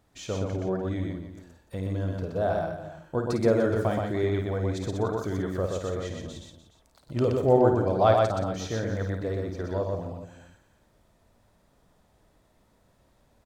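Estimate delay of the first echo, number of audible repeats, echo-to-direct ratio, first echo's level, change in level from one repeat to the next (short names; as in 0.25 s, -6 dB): 53 ms, 5, -1.0 dB, -7.5 dB, no steady repeat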